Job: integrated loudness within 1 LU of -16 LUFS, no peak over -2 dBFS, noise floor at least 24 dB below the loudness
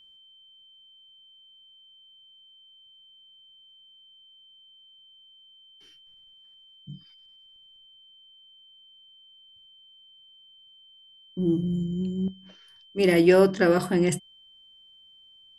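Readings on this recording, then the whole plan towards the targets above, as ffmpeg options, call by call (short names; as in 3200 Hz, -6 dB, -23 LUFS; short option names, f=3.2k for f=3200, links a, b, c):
steady tone 3100 Hz; tone level -52 dBFS; loudness -23.5 LUFS; peak -7.0 dBFS; loudness target -16.0 LUFS
-> -af "bandreject=f=3.1k:w=30"
-af "volume=7.5dB,alimiter=limit=-2dB:level=0:latency=1"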